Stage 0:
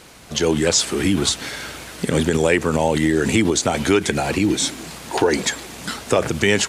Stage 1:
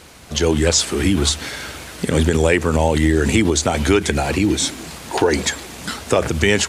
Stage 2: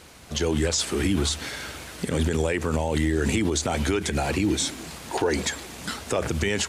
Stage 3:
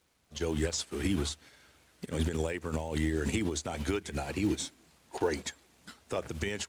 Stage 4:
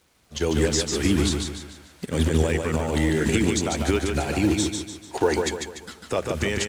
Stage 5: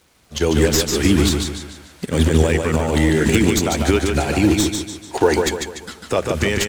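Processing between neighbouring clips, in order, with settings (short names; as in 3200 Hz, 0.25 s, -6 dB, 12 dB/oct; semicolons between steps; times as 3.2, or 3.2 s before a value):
bell 76 Hz +14 dB 0.26 oct; gain +1 dB
limiter -9 dBFS, peak gain reduction 7.5 dB; gain -5 dB
crackle 340/s -37 dBFS; upward expander 2.5:1, over -34 dBFS; gain -4 dB
feedback echo 0.147 s, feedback 42%, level -4.5 dB; gain +8.5 dB
tracing distortion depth 0.031 ms; gain +6 dB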